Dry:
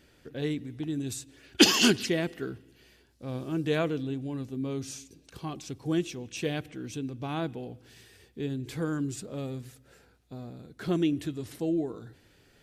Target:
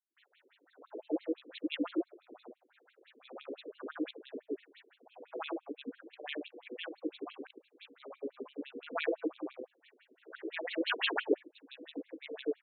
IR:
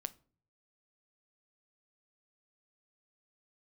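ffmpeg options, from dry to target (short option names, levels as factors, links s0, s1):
-filter_complex "[0:a]areverse,tremolo=f=210:d=0.621,acrossover=split=150|590[s0][s1][s2];[s2]adelay=150[s3];[s1]adelay=300[s4];[s0][s4][s3]amix=inputs=3:normalize=0,asplit=2[s5][s6];[1:a]atrim=start_sample=2205[s7];[s6][s7]afir=irnorm=-1:irlink=0,volume=0.841[s8];[s5][s8]amix=inputs=2:normalize=0,afftfilt=real='re*between(b*sr/1024,360*pow(3100/360,0.5+0.5*sin(2*PI*5.9*pts/sr))/1.41,360*pow(3100/360,0.5+0.5*sin(2*PI*5.9*pts/sr))*1.41)':imag='im*between(b*sr/1024,360*pow(3100/360,0.5+0.5*sin(2*PI*5.9*pts/sr))/1.41,360*pow(3100/360,0.5+0.5*sin(2*PI*5.9*pts/sr))*1.41)':win_size=1024:overlap=0.75,volume=1.12"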